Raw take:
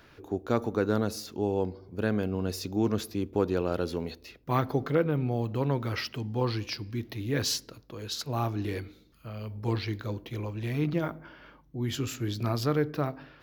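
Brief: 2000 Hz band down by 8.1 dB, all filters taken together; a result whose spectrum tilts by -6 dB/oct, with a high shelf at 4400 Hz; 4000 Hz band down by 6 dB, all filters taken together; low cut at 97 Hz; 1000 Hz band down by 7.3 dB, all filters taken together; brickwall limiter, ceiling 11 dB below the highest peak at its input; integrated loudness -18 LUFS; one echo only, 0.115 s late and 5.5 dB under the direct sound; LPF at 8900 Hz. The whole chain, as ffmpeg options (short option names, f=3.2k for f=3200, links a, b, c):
-af "highpass=97,lowpass=8.9k,equalizer=f=1k:t=o:g=-8,equalizer=f=2k:t=o:g=-6.5,equalizer=f=4k:t=o:g=-8,highshelf=f=4.4k:g=3.5,alimiter=level_in=1.5dB:limit=-24dB:level=0:latency=1,volume=-1.5dB,aecho=1:1:115:0.531,volume=17.5dB"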